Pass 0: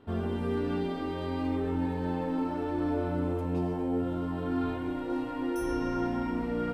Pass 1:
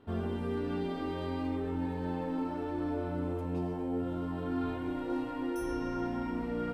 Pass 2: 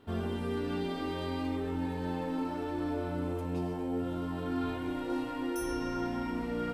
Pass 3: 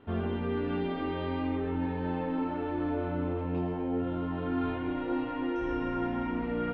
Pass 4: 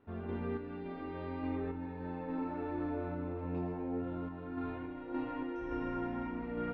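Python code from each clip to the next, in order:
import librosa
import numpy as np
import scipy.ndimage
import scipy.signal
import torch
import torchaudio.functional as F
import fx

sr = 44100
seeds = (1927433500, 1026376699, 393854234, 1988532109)

y1 = fx.rider(x, sr, range_db=10, speed_s=0.5)
y1 = F.gain(torch.from_numpy(y1), -3.5).numpy()
y2 = fx.high_shelf(y1, sr, hz=2500.0, db=8.5)
y3 = scipy.signal.sosfilt(scipy.signal.butter(4, 3000.0, 'lowpass', fs=sr, output='sos'), y2)
y3 = F.gain(torch.from_numpy(y3), 2.5).numpy()
y4 = fx.tremolo_random(y3, sr, seeds[0], hz=3.5, depth_pct=55)
y4 = fx.peak_eq(y4, sr, hz=3300.0, db=-3.0, octaves=0.77)
y4 = fx.notch(y4, sr, hz=3100.0, q=10.0)
y4 = F.gain(torch.from_numpy(y4), -5.0).numpy()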